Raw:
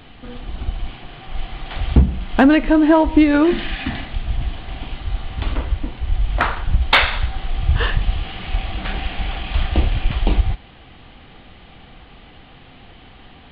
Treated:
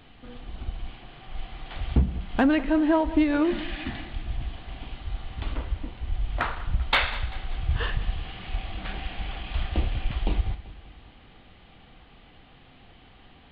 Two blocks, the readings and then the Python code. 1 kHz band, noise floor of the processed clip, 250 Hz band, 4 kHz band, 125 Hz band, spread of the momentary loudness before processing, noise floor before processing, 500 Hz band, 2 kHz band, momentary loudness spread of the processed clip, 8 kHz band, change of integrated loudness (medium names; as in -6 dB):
-9.0 dB, -53 dBFS, -9.0 dB, -9.0 dB, -9.0 dB, 19 LU, -44 dBFS, -9.0 dB, -9.0 dB, 19 LU, no reading, -9.0 dB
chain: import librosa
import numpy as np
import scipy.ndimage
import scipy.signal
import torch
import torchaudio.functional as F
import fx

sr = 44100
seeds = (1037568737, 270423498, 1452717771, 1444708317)

y = fx.echo_feedback(x, sr, ms=194, feedback_pct=54, wet_db=-17.5)
y = F.gain(torch.from_numpy(y), -9.0).numpy()